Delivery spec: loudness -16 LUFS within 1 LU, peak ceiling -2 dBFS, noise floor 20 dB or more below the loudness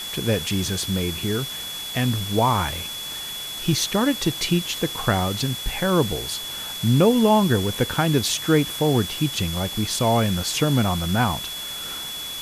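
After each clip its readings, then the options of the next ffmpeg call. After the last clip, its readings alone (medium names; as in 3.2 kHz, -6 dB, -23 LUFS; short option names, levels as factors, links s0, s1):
steady tone 3.4 kHz; tone level -31 dBFS; noise floor -32 dBFS; noise floor target -43 dBFS; loudness -22.5 LUFS; peak level -6.0 dBFS; loudness target -16.0 LUFS
-> -af "bandreject=f=3400:w=30"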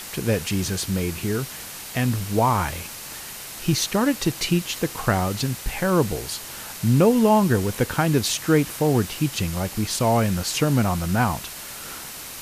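steady tone not found; noise floor -37 dBFS; noise floor target -43 dBFS
-> -af "afftdn=nr=6:nf=-37"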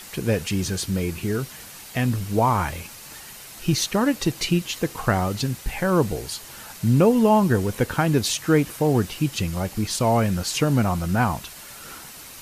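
noise floor -42 dBFS; noise floor target -43 dBFS
-> -af "afftdn=nr=6:nf=-42"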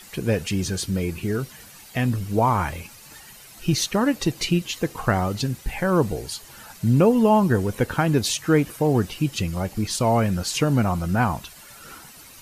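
noise floor -46 dBFS; loudness -22.5 LUFS; peak level -6.0 dBFS; loudness target -16.0 LUFS
-> -af "volume=2.11,alimiter=limit=0.794:level=0:latency=1"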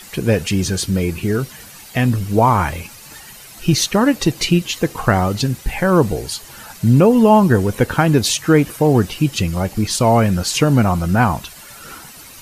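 loudness -16.5 LUFS; peak level -2.0 dBFS; noise floor -39 dBFS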